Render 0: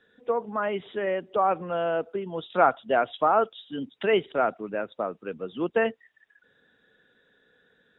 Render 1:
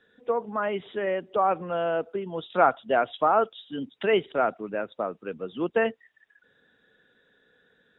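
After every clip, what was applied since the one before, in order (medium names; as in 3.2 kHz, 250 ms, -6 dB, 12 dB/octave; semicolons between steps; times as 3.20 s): no audible change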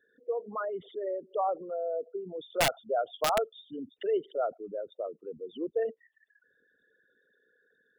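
resonances exaggerated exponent 3; integer overflow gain 12.5 dB; trim -6 dB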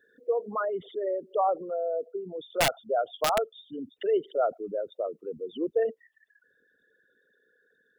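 gain riding within 5 dB 2 s; trim +2.5 dB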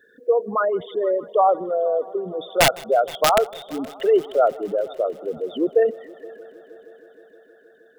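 multi-head delay 157 ms, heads first and third, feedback 70%, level -23.5 dB; trim +8.5 dB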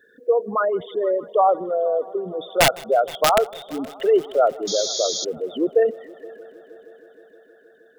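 painted sound noise, 4.67–5.25 s, 3.2–7 kHz -27 dBFS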